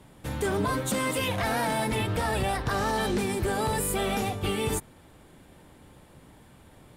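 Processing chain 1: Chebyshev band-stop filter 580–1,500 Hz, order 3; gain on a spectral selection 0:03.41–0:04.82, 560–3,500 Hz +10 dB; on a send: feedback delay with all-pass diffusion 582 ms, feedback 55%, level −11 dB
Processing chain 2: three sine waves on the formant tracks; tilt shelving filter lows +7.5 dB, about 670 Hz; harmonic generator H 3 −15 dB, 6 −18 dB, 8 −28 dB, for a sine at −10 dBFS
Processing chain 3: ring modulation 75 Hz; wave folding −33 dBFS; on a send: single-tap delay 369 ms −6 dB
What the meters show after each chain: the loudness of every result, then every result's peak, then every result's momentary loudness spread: −28.0, −32.0, −37.0 LKFS; −13.5, −9.0, −29.5 dBFS; 18, 9, 20 LU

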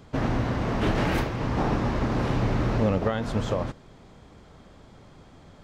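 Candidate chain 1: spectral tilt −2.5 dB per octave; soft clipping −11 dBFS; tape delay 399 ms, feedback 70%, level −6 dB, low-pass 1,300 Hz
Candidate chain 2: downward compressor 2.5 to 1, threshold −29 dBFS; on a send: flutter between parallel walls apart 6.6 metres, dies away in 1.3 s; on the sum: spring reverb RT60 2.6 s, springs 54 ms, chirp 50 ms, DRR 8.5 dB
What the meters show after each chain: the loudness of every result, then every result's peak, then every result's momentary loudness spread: −22.0, −27.0 LKFS; −9.0, −13.0 dBFS; 18, 20 LU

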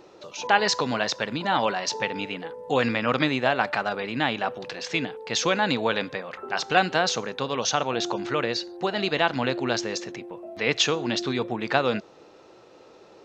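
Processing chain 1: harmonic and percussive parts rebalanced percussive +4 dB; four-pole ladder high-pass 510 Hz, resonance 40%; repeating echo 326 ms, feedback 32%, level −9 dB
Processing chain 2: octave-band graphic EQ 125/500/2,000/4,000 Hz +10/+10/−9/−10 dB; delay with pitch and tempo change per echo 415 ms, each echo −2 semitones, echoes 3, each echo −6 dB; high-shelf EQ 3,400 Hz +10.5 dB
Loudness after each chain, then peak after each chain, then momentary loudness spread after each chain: −29.0, −20.5 LKFS; −9.0, −1.0 dBFS; 10, 7 LU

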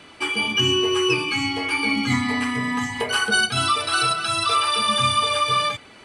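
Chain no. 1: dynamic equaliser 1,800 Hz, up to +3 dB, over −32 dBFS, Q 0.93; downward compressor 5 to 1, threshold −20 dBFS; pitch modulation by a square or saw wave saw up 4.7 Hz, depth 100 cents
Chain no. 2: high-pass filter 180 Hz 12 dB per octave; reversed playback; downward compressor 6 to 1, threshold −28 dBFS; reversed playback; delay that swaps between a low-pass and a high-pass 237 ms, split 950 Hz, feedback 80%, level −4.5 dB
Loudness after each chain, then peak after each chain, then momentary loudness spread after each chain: −22.5, −28.0 LKFS; −11.0, −15.5 dBFS; 2, 2 LU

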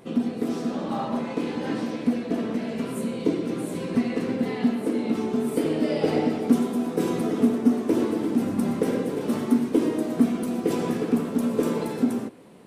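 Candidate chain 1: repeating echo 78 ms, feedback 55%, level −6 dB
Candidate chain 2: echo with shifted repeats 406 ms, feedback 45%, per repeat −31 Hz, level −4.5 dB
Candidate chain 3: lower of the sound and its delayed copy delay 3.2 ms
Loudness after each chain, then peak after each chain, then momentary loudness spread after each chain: −25.0, −24.0, −27.0 LKFS; −7.5, −7.0, −8.5 dBFS; 5, 6, 6 LU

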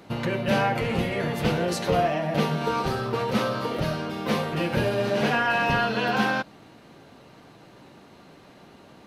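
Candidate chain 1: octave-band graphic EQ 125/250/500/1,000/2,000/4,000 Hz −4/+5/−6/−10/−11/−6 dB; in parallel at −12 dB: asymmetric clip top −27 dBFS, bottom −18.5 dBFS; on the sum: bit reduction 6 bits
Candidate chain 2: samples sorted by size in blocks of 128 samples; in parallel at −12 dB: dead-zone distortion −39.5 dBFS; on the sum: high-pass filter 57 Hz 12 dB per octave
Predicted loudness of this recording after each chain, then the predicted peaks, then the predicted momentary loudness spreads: −27.0, −23.0 LKFS; −12.0, −7.5 dBFS; 3, 5 LU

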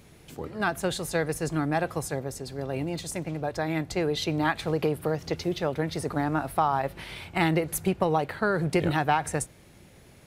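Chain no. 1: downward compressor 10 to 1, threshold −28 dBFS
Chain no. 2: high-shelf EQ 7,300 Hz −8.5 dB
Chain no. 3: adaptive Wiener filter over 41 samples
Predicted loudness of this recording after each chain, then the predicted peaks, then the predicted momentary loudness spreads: −34.0, −28.5, −29.5 LKFS; −15.5, −9.5, −10.0 dBFS; 5, 9, 10 LU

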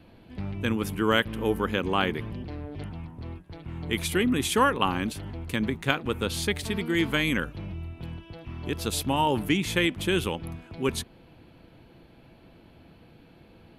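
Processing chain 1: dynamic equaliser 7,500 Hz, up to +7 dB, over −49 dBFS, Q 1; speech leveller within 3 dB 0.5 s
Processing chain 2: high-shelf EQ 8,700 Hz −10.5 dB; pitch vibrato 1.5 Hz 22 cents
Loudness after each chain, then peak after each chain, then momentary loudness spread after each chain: −28.0, −28.0 LKFS; −3.0, −4.5 dBFS; 12, 16 LU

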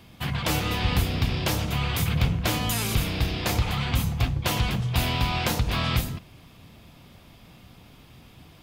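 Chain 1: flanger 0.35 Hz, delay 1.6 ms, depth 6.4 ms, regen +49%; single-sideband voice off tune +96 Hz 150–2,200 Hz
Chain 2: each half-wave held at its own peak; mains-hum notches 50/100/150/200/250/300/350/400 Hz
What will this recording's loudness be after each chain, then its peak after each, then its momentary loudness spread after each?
−35.0, −21.5 LKFS; −19.5, −9.5 dBFS; 4, 2 LU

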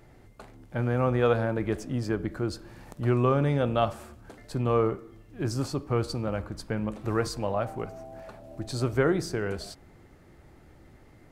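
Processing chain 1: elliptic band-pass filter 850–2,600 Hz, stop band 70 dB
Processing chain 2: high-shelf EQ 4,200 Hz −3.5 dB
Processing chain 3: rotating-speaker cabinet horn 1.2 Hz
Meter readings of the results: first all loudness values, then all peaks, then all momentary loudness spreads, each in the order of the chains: −39.0, −28.5, −30.5 LKFS; −18.0, −10.0, −11.0 dBFS; 20, 19, 19 LU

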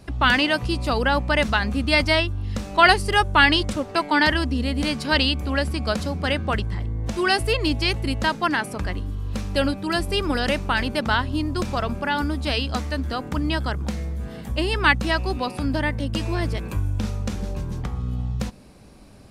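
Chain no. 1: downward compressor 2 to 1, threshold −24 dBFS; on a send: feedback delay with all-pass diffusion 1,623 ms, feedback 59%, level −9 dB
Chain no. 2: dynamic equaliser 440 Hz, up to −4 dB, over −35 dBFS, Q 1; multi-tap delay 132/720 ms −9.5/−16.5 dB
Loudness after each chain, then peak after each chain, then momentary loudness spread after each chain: −26.0, −23.0 LKFS; −9.5, −2.5 dBFS; 6, 10 LU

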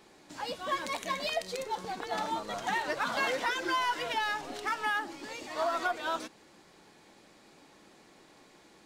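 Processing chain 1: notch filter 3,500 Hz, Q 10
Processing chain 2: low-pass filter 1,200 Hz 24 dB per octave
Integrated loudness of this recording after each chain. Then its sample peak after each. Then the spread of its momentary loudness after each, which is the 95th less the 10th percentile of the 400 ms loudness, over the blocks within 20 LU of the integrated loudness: −33.0, −36.0 LKFS; −19.0, −20.5 dBFS; 9, 9 LU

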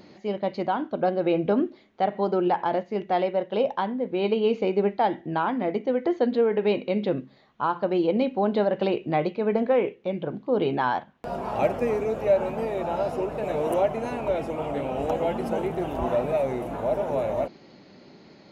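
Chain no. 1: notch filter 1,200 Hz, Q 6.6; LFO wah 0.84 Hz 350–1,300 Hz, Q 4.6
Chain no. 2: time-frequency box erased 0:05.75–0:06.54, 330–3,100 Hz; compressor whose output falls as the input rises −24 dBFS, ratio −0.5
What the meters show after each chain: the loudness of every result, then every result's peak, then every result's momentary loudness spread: −34.5, −27.5 LKFS; −16.5, −11.0 dBFS; 12, 4 LU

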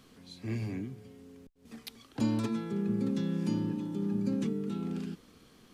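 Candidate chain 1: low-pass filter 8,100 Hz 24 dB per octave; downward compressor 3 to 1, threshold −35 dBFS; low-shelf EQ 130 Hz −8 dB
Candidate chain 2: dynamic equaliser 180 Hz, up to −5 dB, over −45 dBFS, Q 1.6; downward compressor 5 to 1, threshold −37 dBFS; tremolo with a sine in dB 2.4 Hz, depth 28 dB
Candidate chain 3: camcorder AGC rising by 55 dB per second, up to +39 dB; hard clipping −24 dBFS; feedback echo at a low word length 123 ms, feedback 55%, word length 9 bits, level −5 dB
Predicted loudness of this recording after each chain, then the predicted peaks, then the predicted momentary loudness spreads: −41.0, −48.5, −32.5 LKFS; −24.0, −30.0, −19.0 dBFS; 15, 14, 5 LU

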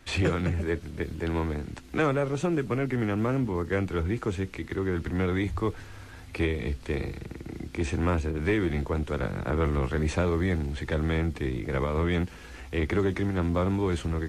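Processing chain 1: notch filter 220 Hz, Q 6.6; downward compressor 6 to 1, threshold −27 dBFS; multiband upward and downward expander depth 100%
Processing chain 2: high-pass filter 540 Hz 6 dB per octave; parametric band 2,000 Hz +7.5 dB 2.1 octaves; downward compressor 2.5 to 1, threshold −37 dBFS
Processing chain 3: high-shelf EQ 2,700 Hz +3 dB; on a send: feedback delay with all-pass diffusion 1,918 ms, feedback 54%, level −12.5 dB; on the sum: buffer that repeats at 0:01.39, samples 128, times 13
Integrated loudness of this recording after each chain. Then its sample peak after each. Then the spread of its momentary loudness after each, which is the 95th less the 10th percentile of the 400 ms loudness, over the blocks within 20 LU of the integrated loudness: −33.0, −38.0, −28.5 LKFS; −15.0, −19.5, −13.5 dBFS; 6, 5, 7 LU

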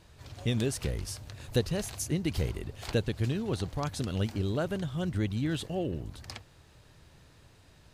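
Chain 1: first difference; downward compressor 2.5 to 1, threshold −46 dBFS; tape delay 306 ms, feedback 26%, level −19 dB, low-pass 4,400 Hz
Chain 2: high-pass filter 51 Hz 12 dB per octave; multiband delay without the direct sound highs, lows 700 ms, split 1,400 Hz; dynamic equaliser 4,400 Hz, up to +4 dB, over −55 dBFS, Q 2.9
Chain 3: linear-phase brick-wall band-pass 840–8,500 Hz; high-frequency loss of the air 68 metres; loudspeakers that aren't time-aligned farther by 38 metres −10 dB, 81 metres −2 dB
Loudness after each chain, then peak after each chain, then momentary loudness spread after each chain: −49.5, −33.0, −42.0 LKFS; −25.5, −13.0, −21.0 dBFS; 21, 9, 19 LU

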